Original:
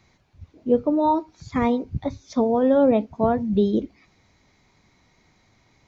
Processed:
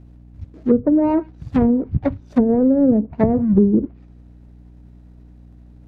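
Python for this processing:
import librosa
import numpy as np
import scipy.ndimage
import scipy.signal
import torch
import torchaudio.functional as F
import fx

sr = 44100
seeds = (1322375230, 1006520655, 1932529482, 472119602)

y = scipy.signal.medfilt(x, 41)
y = fx.add_hum(y, sr, base_hz=60, snr_db=27)
y = fx.env_lowpass_down(y, sr, base_hz=320.0, full_db=-17.0)
y = F.gain(torch.from_numpy(y), 8.0).numpy()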